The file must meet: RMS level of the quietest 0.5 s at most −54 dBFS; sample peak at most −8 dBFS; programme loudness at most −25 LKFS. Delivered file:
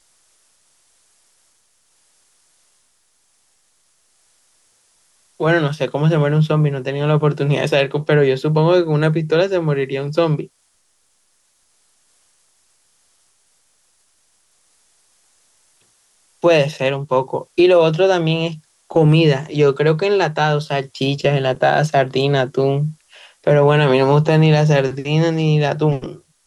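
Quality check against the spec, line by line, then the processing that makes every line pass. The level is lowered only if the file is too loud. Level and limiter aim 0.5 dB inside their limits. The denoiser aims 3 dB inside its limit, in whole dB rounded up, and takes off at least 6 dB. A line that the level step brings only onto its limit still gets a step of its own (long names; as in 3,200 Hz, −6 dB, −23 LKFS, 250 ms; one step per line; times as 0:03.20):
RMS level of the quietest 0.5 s −62 dBFS: in spec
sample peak −4.0 dBFS: out of spec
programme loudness −16.5 LKFS: out of spec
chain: level −9 dB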